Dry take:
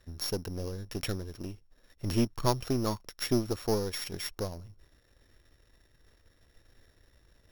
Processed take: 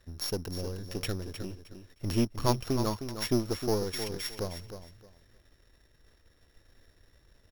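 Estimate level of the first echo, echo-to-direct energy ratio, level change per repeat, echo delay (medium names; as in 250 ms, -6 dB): -9.5 dB, -9.5 dB, -13.0 dB, 310 ms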